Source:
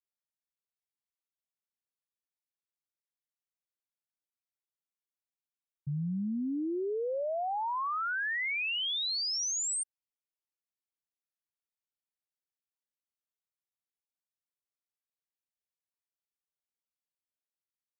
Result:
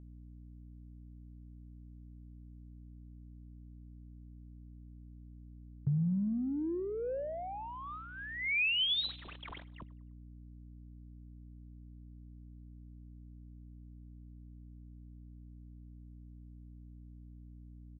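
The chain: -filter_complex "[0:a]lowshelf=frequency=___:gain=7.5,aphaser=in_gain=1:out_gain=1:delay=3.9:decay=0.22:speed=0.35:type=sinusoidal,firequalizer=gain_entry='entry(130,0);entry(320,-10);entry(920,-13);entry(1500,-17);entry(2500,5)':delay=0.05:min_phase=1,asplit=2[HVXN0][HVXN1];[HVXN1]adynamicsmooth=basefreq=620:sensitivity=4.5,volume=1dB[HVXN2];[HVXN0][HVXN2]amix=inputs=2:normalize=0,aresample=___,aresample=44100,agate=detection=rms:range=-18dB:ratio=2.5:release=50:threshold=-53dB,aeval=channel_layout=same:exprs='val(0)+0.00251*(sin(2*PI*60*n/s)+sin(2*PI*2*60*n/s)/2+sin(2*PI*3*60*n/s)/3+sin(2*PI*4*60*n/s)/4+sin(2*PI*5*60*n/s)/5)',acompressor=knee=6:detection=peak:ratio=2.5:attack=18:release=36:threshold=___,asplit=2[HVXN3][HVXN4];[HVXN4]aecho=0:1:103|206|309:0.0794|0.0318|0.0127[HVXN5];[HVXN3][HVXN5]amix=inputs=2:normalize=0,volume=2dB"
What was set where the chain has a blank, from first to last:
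170, 8000, -38dB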